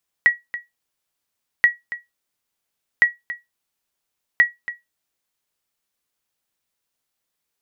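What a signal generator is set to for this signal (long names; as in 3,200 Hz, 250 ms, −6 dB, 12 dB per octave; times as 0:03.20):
ping with an echo 1,920 Hz, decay 0.18 s, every 1.38 s, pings 4, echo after 0.28 s, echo −15 dB −5 dBFS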